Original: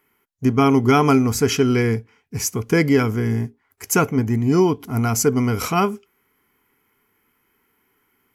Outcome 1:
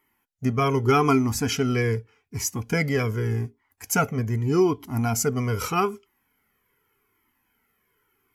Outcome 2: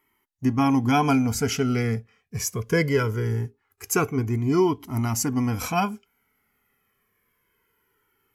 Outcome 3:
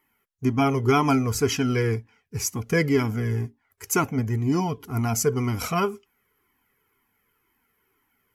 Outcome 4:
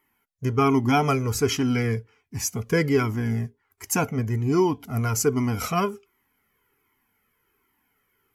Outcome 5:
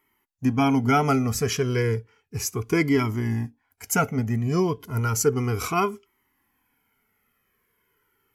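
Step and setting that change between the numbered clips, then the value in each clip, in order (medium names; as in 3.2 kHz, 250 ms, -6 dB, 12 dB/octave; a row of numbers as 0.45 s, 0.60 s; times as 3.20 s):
Shepard-style flanger, rate: 0.83 Hz, 0.21 Hz, 2 Hz, 1.3 Hz, 0.33 Hz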